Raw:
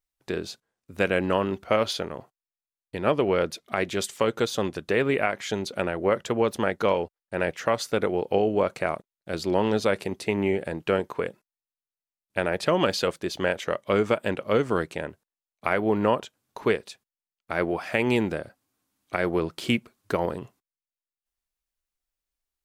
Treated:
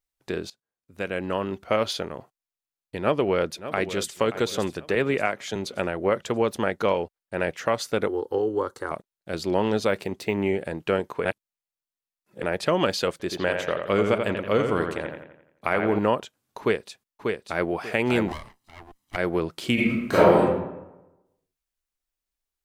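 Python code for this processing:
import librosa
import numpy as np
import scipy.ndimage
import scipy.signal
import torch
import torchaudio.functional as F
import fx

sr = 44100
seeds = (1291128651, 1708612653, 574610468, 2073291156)

y = fx.echo_throw(x, sr, start_s=3.0, length_s=1.16, ms=580, feedback_pct=45, wet_db=-12.5)
y = fx.band_widen(y, sr, depth_pct=70, at=(4.95, 5.56))
y = fx.fixed_phaser(y, sr, hz=650.0, stages=6, at=(8.08, 8.91))
y = fx.resample_linear(y, sr, factor=2, at=(9.88, 10.42))
y = fx.echo_bbd(y, sr, ms=86, stages=2048, feedback_pct=48, wet_db=-5.5, at=(13.11, 15.99))
y = fx.echo_throw(y, sr, start_s=16.6, length_s=1.13, ms=590, feedback_pct=25, wet_db=-4.0)
y = fx.lower_of_two(y, sr, delay_ms=1.0, at=(18.27, 19.15), fade=0.02)
y = fx.reverb_throw(y, sr, start_s=19.74, length_s=0.67, rt60_s=1.0, drr_db=-11.0)
y = fx.edit(y, sr, fx.fade_in_from(start_s=0.5, length_s=1.36, floor_db=-18.5),
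    fx.reverse_span(start_s=11.25, length_s=1.18), tone=tone)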